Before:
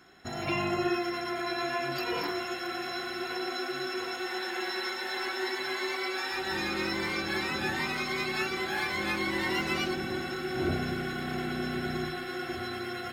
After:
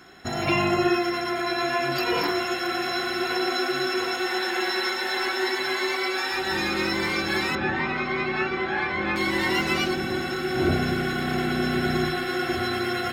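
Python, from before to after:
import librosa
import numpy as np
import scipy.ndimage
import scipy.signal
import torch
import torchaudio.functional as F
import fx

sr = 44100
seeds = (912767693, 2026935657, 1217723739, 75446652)

y = fx.lowpass(x, sr, hz=2400.0, slope=12, at=(7.55, 9.16))
y = fx.rider(y, sr, range_db=3, speed_s=2.0)
y = y * 10.0 ** (7.0 / 20.0)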